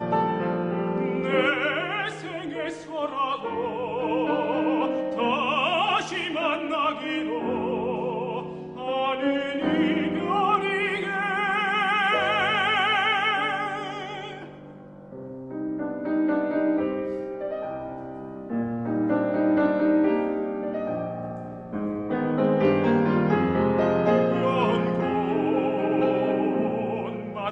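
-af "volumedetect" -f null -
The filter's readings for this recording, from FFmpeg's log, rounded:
mean_volume: -25.1 dB
max_volume: -10.3 dB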